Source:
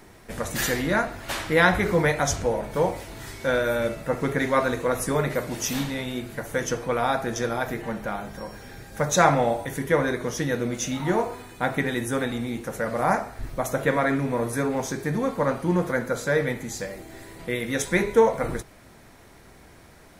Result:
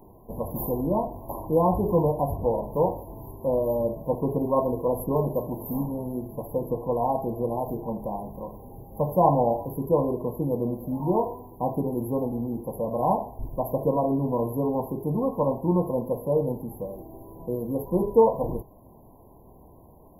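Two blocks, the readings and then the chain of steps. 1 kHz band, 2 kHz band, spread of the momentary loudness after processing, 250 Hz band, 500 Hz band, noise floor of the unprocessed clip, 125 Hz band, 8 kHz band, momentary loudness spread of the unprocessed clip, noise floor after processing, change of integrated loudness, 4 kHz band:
-1.5 dB, under -40 dB, 12 LU, 0.0 dB, 0.0 dB, -50 dBFS, 0.0 dB, under -15 dB, 12 LU, -51 dBFS, -1.5 dB, under -40 dB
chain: brick-wall FIR band-stop 1.1–11 kHz

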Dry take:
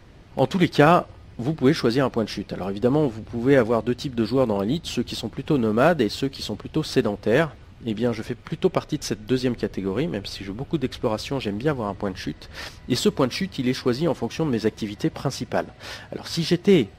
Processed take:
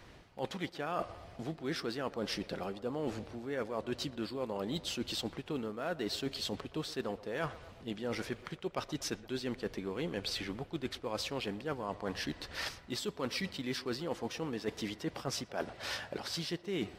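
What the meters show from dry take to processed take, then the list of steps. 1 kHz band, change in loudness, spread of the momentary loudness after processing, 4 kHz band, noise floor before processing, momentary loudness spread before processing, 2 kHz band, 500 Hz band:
-14.5 dB, -15.0 dB, 4 LU, -8.0 dB, -46 dBFS, 12 LU, -12.0 dB, -16.0 dB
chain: bass shelf 360 Hz -9 dB; reverse; compression 16:1, threshold -32 dBFS, peak gain reduction 20.5 dB; reverse; band-passed feedback delay 120 ms, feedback 71%, band-pass 660 Hz, level -16 dB; trim -1 dB

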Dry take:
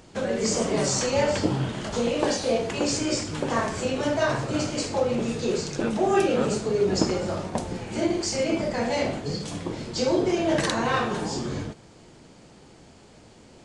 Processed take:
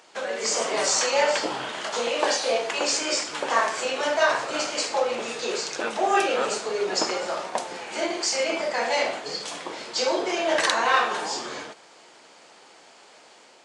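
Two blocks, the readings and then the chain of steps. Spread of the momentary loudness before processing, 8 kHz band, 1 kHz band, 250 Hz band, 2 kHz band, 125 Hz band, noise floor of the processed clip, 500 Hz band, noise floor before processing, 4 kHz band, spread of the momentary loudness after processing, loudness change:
8 LU, +3.5 dB, +4.5 dB, -9.5 dB, +6.0 dB, under -20 dB, -52 dBFS, -1.0 dB, -51 dBFS, +5.0 dB, 10 LU, +1.0 dB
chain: high-pass 730 Hz 12 dB/octave; treble shelf 7.2 kHz -6.5 dB; level rider gain up to 3 dB; trim +3.5 dB

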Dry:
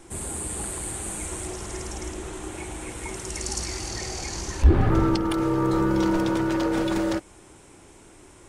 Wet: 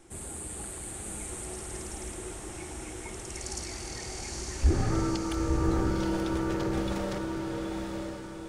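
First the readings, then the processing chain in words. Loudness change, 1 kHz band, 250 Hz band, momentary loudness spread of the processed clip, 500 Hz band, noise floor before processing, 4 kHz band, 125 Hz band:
-6.5 dB, -6.5 dB, -6.5 dB, 12 LU, -6.0 dB, -50 dBFS, -5.5 dB, -5.5 dB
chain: band-stop 1 kHz, Q 12; on a send: echo that smears into a reverb 907 ms, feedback 42%, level -3 dB; on the sum: trim -7.5 dB

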